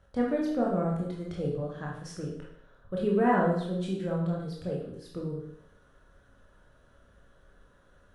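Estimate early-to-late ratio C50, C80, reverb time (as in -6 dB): 2.5 dB, 6.5 dB, 0.70 s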